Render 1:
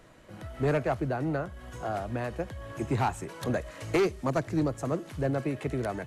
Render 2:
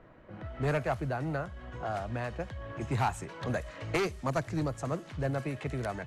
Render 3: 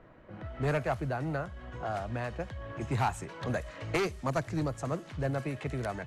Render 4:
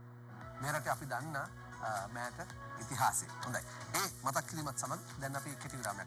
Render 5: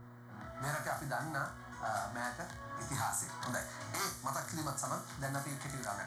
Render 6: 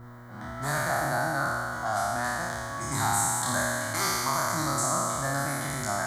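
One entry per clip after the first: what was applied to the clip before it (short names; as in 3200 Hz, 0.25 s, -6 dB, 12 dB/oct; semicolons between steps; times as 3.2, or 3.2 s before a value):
low-pass opened by the level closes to 1700 Hz, open at -25 dBFS; dynamic EQ 340 Hz, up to -7 dB, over -42 dBFS, Q 0.97
nothing audible
RIAA curve recording; fixed phaser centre 1100 Hz, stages 4; buzz 120 Hz, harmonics 4, -53 dBFS -9 dB/oct
limiter -28 dBFS, peak gain reduction 10.5 dB; on a send: flutter echo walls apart 4.9 m, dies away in 0.33 s; on the sum: gain +1 dB
spectral trails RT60 2.69 s; gain +6 dB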